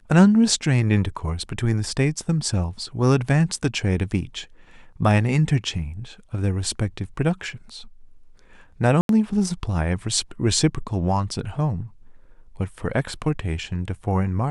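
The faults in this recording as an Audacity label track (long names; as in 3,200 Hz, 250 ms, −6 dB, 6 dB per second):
9.010000	9.090000	drop-out 82 ms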